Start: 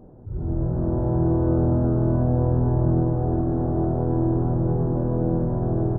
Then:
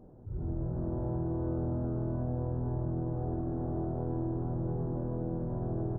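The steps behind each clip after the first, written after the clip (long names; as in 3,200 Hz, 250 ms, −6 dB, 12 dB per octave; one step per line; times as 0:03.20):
downward compressor 3 to 1, threshold −24 dBFS, peak gain reduction 7 dB
level −7 dB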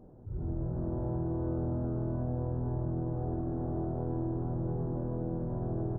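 no processing that can be heard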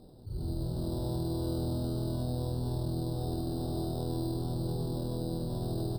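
decimation without filtering 10×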